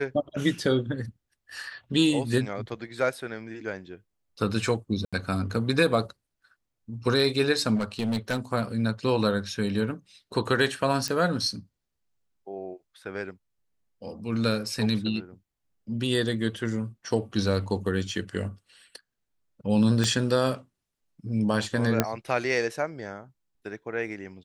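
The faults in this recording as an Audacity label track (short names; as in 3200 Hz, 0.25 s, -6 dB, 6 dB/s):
5.050000	5.130000	gap 76 ms
7.750000	8.390000	clipped -23 dBFS
11.080000	11.080000	pop -14 dBFS
20.040000	20.040000	pop -12 dBFS
22.000000	22.000000	pop -6 dBFS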